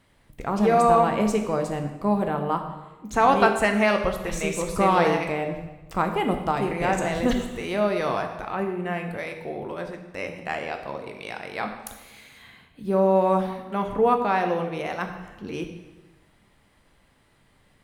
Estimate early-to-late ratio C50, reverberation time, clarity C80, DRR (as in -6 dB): 7.5 dB, 1.1 s, 9.5 dB, 4.5 dB